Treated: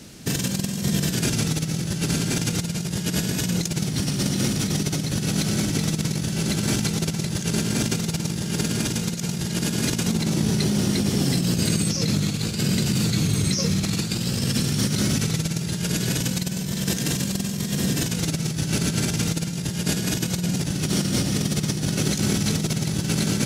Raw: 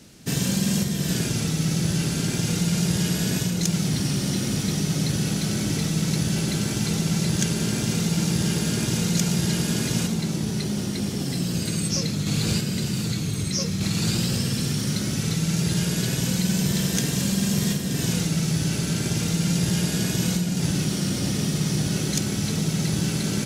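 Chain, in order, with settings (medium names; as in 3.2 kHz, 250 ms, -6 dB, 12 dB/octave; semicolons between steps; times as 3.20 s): compressor with a negative ratio -26 dBFS, ratio -0.5; trim +3 dB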